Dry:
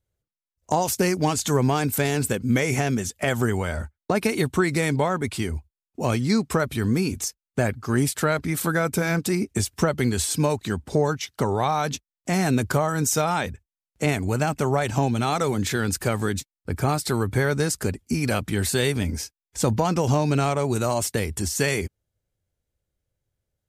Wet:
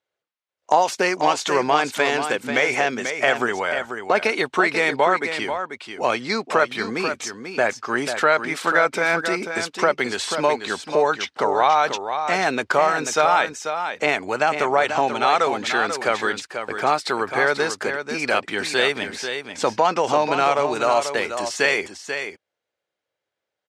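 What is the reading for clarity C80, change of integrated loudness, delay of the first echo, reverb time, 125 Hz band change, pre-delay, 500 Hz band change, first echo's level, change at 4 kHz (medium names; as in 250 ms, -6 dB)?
no reverb, +3.0 dB, 489 ms, no reverb, -16.0 dB, no reverb, +4.0 dB, -8.0 dB, +5.0 dB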